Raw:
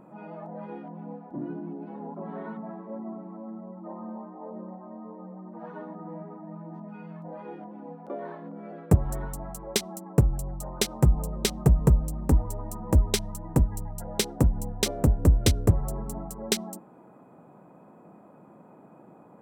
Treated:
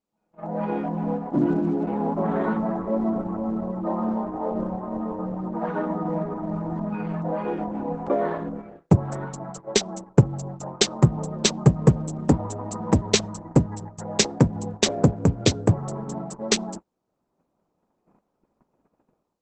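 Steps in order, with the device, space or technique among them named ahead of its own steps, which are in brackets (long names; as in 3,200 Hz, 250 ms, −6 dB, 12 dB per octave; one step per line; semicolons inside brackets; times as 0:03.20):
0:03.33–0:03.76: high-shelf EQ 9,900 Hz −7 dB
video call (high-pass filter 110 Hz 24 dB per octave; automatic gain control gain up to 14.5 dB; noise gate −32 dBFS, range −36 dB; level −1 dB; Opus 12 kbit/s 48,000 Hz)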